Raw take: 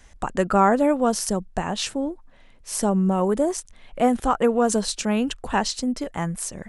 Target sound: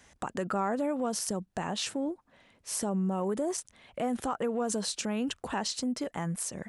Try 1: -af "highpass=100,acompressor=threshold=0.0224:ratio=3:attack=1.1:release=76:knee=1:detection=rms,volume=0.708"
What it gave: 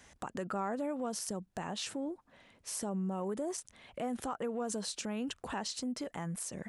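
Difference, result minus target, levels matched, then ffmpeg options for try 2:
compression: peak gain reduction +5.5 dB
-af "highpass=100,acompressor=threshold=0.0596:ratio=3:attack=1.1:release=76:knee=1:detection=rms,volume=0.708"

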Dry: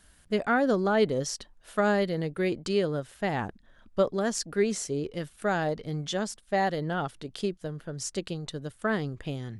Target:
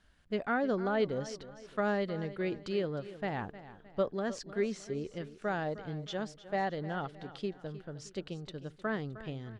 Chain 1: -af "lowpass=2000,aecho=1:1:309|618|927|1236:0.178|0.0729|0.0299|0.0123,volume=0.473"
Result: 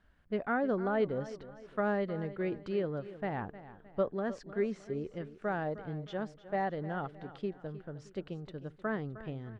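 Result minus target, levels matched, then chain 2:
4 kHz band -8.0 dB
-af "lowpass=4200,aecho=1:1:309|618|927|1236:0.178|0.0729|0.0299|0.0123,volume=0.473"

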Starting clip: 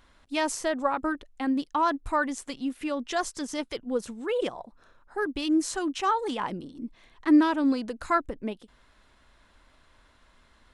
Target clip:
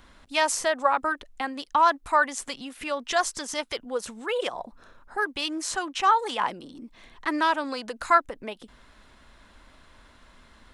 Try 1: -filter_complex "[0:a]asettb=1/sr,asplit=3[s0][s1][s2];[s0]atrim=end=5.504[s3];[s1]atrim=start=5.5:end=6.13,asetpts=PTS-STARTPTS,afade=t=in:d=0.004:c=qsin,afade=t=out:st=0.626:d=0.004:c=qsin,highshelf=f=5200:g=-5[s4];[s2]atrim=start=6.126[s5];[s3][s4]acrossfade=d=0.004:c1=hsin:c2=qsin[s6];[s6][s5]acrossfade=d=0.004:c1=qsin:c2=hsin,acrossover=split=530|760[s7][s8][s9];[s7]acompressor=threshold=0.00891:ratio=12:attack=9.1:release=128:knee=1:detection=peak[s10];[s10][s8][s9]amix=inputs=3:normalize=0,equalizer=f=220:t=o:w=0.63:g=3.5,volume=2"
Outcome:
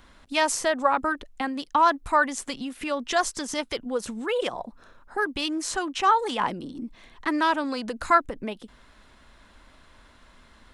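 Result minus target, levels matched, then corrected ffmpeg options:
compression: peak gain reduction -9 dB
-filter_complex "[0:a]asettb=1/sr,asplit=3[s0][s1][s2];[s0]atrim=end=5.504[s3];[s1]atrim=start=5.5:end=6.13,asetpts=PTS-STARTPTS,afade=t=in:d=0.004:c=qsin,afade=t=out:st=0.626:d=0.004:c=qsin,highshelf=f=5200:g=-5[s4];[s2]atrim=start=6.126[s5];[s3][s4]acrossfade=d=0.004:c1=hsin:c2=qsin[s6];[s6][s5]acrossfade=d=0.004:c1=qsin:c2=hsin,acrossover=split=530|760[s7][s8][s9];[s7]acompressor=threshold=0.00282:ratio=12:attack=9.1:release=128:knee=1:detection=peak[s10];[s10][s8][s9]amix=inputs=3:normalize=0,equalizer=f=220:t=o:w=0.63:g=3.5,volume=2"

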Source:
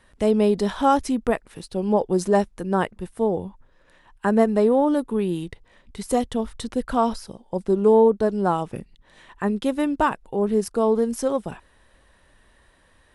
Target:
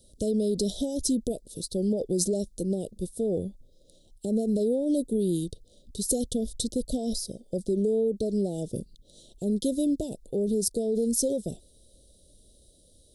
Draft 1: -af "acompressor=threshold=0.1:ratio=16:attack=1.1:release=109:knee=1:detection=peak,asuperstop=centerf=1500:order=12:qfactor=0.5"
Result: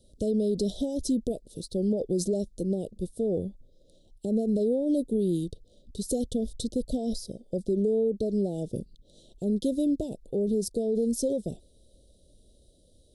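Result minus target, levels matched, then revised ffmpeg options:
8 kHz band -7.5 dB
-af "acompressor=threshold=0.1:ratio=16:attack=1.1:release=109:knee=1:detection=peak,asuperstop=centerf=1500:order=12:qfactor=0.5,highshelf=f=4700:g=10.5"

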